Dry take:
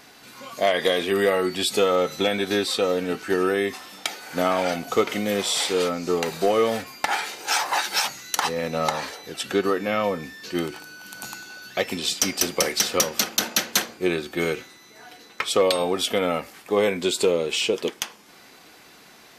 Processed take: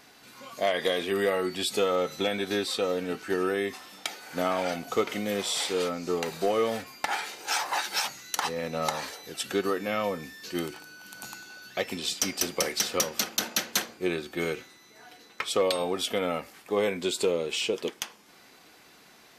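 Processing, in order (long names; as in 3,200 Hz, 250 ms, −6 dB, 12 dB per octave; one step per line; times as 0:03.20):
0:08.82–0:10.74: high-shelf EQ 5,700 Hz +6.5 dB
level −5.5 dB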